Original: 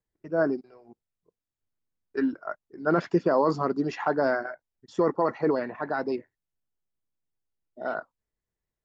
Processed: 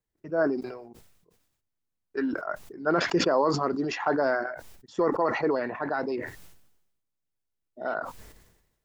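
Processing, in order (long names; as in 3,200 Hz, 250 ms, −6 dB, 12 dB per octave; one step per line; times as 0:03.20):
dynamic equaliser 170 Hz, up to −6 dB, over −39 dBFS, Q 0.87
level that may fall only so fast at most 58 dB per second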